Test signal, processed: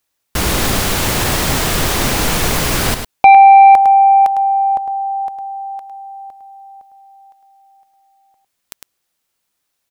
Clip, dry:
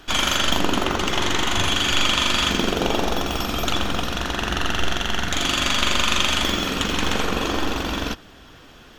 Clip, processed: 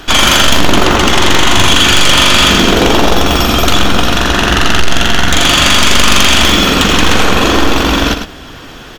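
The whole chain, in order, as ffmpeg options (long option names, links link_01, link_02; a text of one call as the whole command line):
ffmpeg -i in.wav -af "aecho=1:1:105:0.376,aeval=exprs='0.794*sin(PI/2*3.55*val(0)/0.794)':channel_layout=same" out.wav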